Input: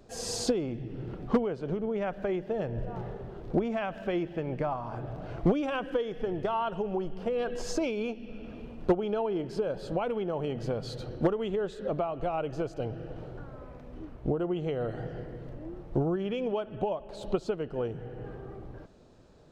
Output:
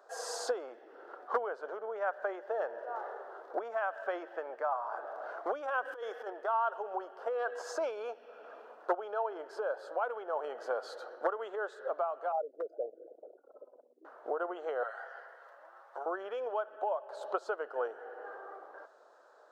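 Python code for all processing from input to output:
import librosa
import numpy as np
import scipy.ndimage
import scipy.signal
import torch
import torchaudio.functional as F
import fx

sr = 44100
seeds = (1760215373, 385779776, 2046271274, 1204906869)

y = fx.chain(x, sr, fx.over_compress(threshold_db=-32.0, ratio=-0.5),
    fx.high_shelf(hz=5100.0, db=10.0), at=(5.85, 6.3))
y = fx.chain(y, sr, fx.envelope_sharpen(power=3.0),
    fx.cheby1_highpass(hz=150.0, order=8),
    fx.clip_hard(threshold_db=-23.5), at=(12.32, 14.05))
y = fx.chain(y, sr, fx.highpass(hz=1000.0, slope=12),
    fx.comb(ms=7.4, depth=0.44), at=(14.83, 16.06))
y = scipy.signal.sosfilt(scipy.signal.cheby2(4, 60, 160.0, 'highpass', fs=sr, output='sos'), y)
y = fx.high_shelf_res(y, sr, hz=1900.0, db=-8.0, q=3.0)
y = fx.rider(y, sr, range_db=3, speed_s=0.5)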